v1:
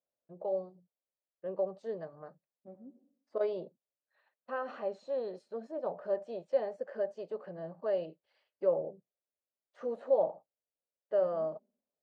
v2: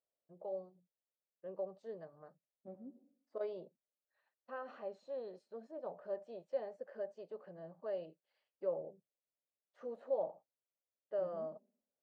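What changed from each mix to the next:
first voice -8.5 dB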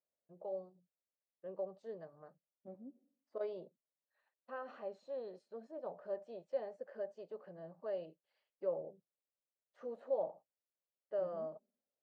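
second voice: send -7.5 dB

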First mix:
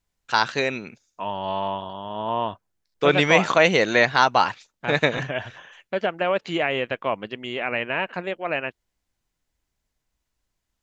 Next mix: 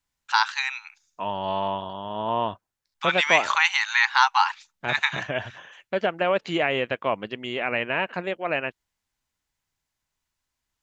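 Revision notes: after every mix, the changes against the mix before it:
first voice: add brick-wall FIR high-pass 780 Hz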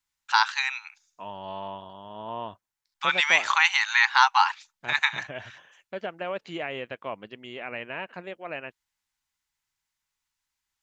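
second voice -9.5 dB

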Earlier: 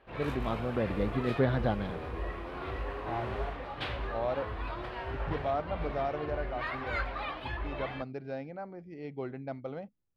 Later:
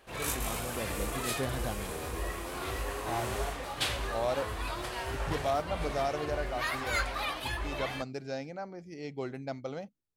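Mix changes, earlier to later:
first voice -8.5 dB; master: remove distance through air 370 m

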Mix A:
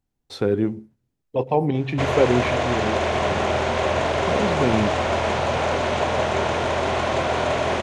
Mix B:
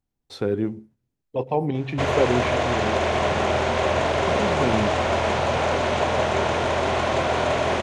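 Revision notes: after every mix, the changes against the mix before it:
speech -3.0 dB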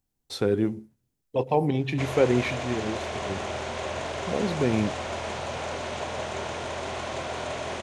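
background -11.0 dB; master: add treble shelf 5 kHz +11 dB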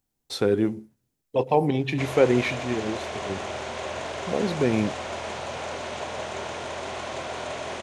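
speech +3.0 dB; master: add bass shelf 150 Hz -6 dB

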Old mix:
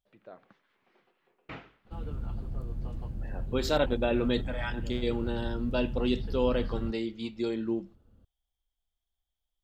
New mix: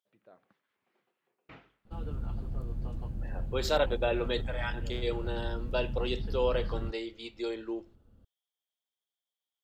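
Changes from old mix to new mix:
first voice -9.0 dB; second voice: add high-pass 370 Hz 24 dB/octave

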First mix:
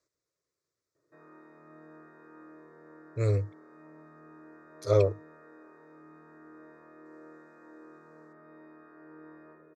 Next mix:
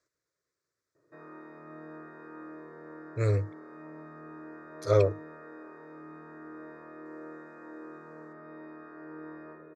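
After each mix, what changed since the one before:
speech: add peaking EQ 1.6 kHz +7.5 dB 0.65 oct; background +6.5 dB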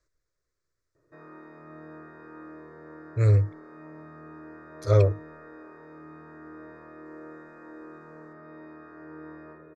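background: remove distance through air 80 m; master: remove high-pass 160 Hz 12 dB/octave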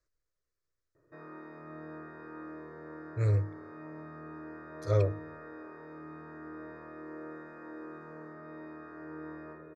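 speech -8.0 dB; reverb: on, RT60 0.45 s

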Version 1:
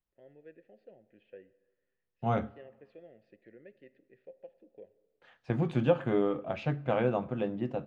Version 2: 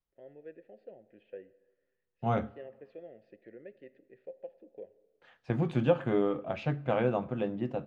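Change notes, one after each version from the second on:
first voice: add peaking EQ 570 Hz +5.5 dB 2.4 oct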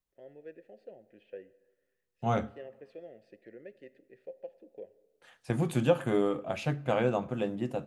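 master: remove distance through air 210 m

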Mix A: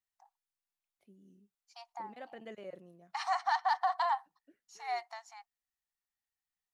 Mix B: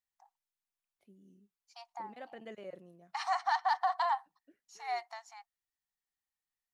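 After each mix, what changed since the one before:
no change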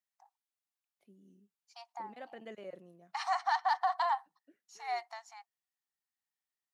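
master: add high-pass 130 Hz

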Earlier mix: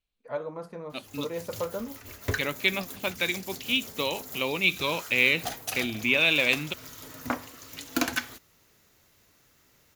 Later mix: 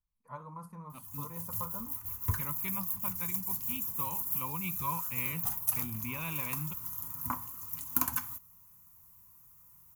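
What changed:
second voice: add distance through air 370 m; master: add FFT filter 170 Hz 0 dB, 360 Hz -20 dB, 690 Hz -19 dB, 1 kHz +3 dB, 1.6 kHz -15 dB, 2.6 kHz -15 dB, 3.9 kHz -19 dB, 13 kHz +10 dB

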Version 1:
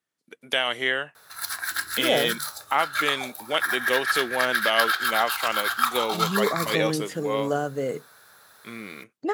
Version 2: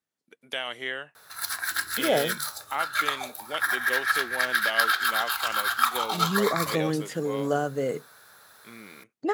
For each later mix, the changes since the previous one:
first voice -8.0 dB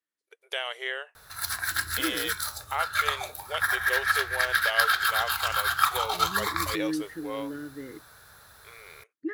first voice: add brick-wall FIR high-pass 370 Hz; second voice: add two resonant band-passes 750 Hz, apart 2.5 oct; master: remove high-pass 210 Hz 12 dB/octave

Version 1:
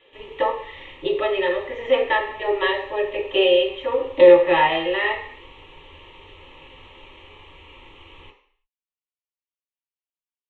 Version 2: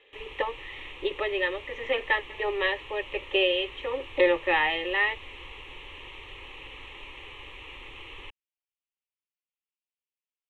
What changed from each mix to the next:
background +6.0 dB; reverb: off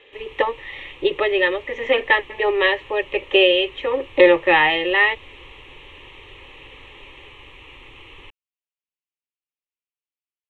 speech +8.5 dB; master: add peaking EQ 160 Hz +6 dB 1.7 oct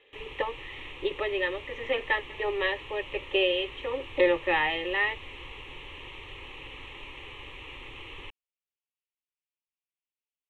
speech -10.5 dB

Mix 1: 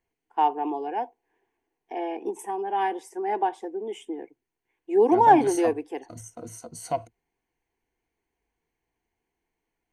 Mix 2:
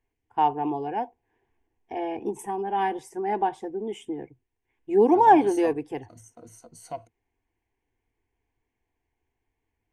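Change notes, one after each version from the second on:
first voice: remove high-pass 280 Hz 24 dB/octave; second voice -8.0 dB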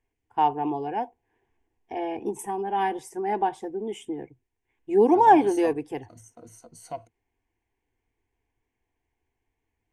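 first voice: add treble shelf 6.2 kHz +5.5 dB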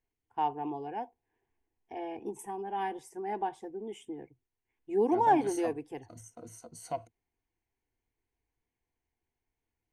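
first voice -8.5 dB

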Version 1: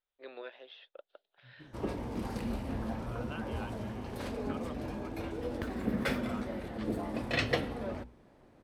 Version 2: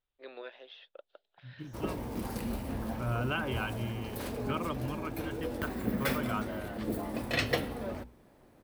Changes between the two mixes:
second voice +11.0 dB; master: remove distance through air 55 m

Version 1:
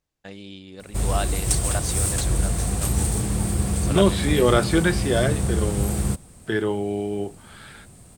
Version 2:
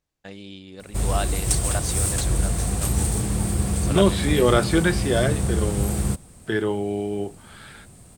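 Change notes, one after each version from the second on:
no change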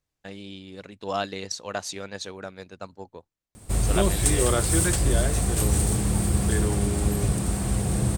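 second voice -7.0 dB; background: entry +2.75 s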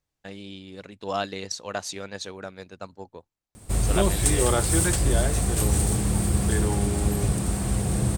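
second voice: add peaking EQ 830 Hz +7.5 dB 0.3 oct

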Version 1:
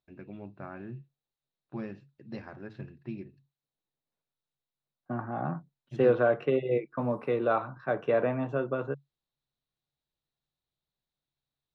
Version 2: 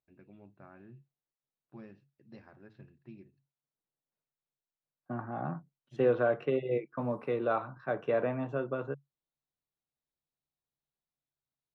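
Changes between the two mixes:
first voice -11.5 dB; second voice -3.5 dB

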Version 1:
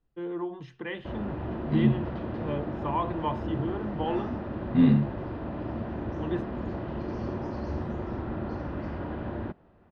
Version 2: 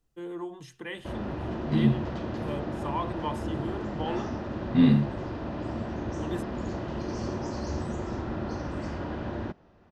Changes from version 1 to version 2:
first voice -4.0 dB; master: remove distance through air 290 m

